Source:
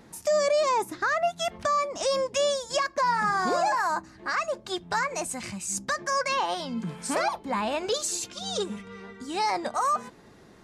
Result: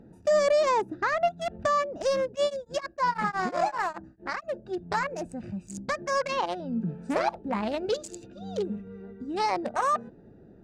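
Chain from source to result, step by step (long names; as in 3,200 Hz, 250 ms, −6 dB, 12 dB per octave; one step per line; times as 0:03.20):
adaptive Wiener filter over 41 samples
high-shelf EQ 6,700 Hz −9 dB
0:02.28–0:04.56: tremolo along a rectified sine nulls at 7.4 Hz → 3.7 Hz
level +3 dB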